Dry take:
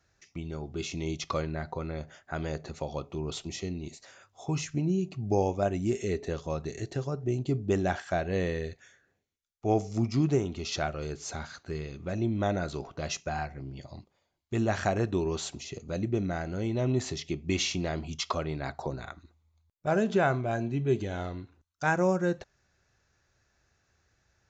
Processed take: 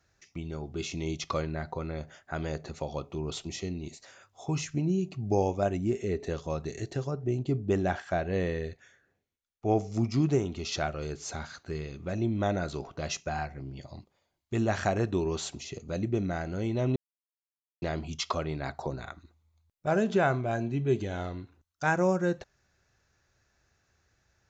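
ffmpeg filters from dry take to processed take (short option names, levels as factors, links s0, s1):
-filter_complex "[0:a]asettb=1/sr,asplit=3[s0][s1][s2];[s0]atrim=end=5.774[s3];[s1]atrim=start=5.77:end=6.2,asetpts=PTS-STARTPTS,afade=t=in:d=0.004:c=qsin,afade=t=out:st=0.426:d=0.004:c=qsin,highshelf=f=2900:g=-9.5[s4];[s2]atrim=start=6.196[s5];[s3][s4]acrossfade=d=0.004:c1=hsin:c2=qsin[s6];[s6][s5]acrossfade=d=0.004:c1=qsin:c2=hsin,asettb=1/sr,asplit=3[s7][s8][s9];[s7]atrim=end=7.114[s10];[s8]atrim=start=7.11:end=9.93,asetpts=PTS-STARTPTS,afade=t=in:d=0.004:c=qsin,afade=t=out:st=2.816:d=0.004:c=qsin,highshelf=f=4500:g=-7[s11];[s9]atrim=start=9.926[s12];[s10][s11]acrossfade=d=0.004:c1=hsin:c2=qsin[s13];[s13][s12]acrossfade=d=0.004:c1=qsin:c2=hsin,asplit=3[s14][s15][s16];[s14]atrim=end=16.96,asetpts=PTS-STARTPTS,afade=t=out:st=16.956:d=0.004:c=hsin[s17];[s15]atrim=start=16.96:end=17.82,asetpts=PTS-STARTPTS,volume=0[s18];[s16]atrim=start=17.82,asetpts=PTS-STARTPTS,afade=t=in:d=0.004:c=hsin[s19];[s17][s18][s19]concat=n=3:v=0:a=1"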